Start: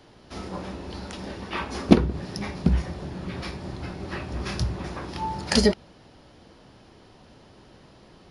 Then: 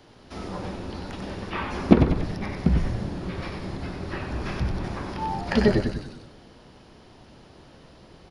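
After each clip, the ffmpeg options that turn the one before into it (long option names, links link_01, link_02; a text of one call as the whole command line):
ffmpeg -i in.wav -filter_complex "[0:a]asplit=2[link_01][link_02];[link_02]asplit=7[link_03][link_04][link_05][link_06][link_07][link_08][link_09];[link_03]adelay=94,afreqshift=-89,volume=-6.5dB[link_10];[link_04]adelay=188,afreqshift=-178,volume=-11.9dB[link_11];[link_05]adelay=282,afreqshift=-267,volume=-17.2dB[link_12];[link_06]adelay=376,afreqshift=-356,volume=-22.6dB[link_13];[link_07]adelay=470,afreqshift=-445,volume=-27.9dB[link_14];[link_08]adelay=564,afreqshift=-534,volume=-33.3dB[link_15];[link_09]adelay=658,afreqshift=-623,volume=-38.6dB[link_16];[link_10][link_11][link_12][link_13][link_14][link_15][link_16]amix=inputs=7:normalize=0[link_17];[link_01][link_17]amix=inputs=2:normalize=0,acrossover=split=3000[link_18][link_19];[link_19]acompressor=threshold=-47dB:ratio=4:attack=1:release=60[link_20];[link_18][link_20]amix=inputs=2:normalize=0,asplit=2[link_21][link_22];[link_22]adelay=103,lowpass=frequency=2000:poles=1,volume=-8.5dB,asplit=2[link_23][link_24];[link_24]adelay=103,lowpass=frequency=2000:poles=1,volume=0.43,asplit=2[link_25][link_26];[link_26]adelay=103,lowpass=frequency=2000:poles=1,volume=0.43,asplit=2[link_27][link_28];[link_28]adelay=103,lowpass=frequency=2000:poles=1,volume=0.43,asplit=2[link_29][link_30];[link_30]adelay=103,lowpass=frequency=2000:poles=1,volume=0.43[link_31];[link_23][link_25][link_27][link_29][link_31]amix=inputs=5:normalize=0[link_32];[link_21][link_32]amix=inputs=2:normalize=0" out.wav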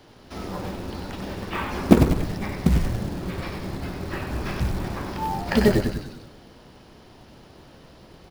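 ffmpeg -i in.wav -af "acrusher=bits=5:mode=log:mix=0:aa=0.000001,volume=1.5dB" out.wav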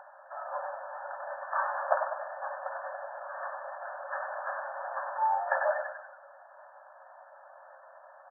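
ffmpeg -i in.wav -filter_complex "[0:a]asplit=2[link_01][link_02];[link_02]aeval=exprs='0.237*(abs(mod(val(0)/0.237+3,4)-2)-1)':channel_layout=same,volume=-8dB[link_03];[link_01][link_03]amix=inputs=2:normalize=0,acompressor=mode=upward:threshold=-39dB:ratio=2.5,afftfilt=real='re*between(b*sr/4096,530,1800)':imag='im*between(b*sr/4096,530,1800)':win_size=4096:overlap=0.75,volume=-1.5dB" out.wav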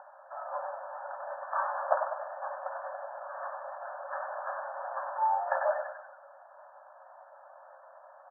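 ffmpeg -i in.wav -af "lowpass=frequency=1500:width=0.5412,lowpass=frequency=1500:width=1.3066" out.wav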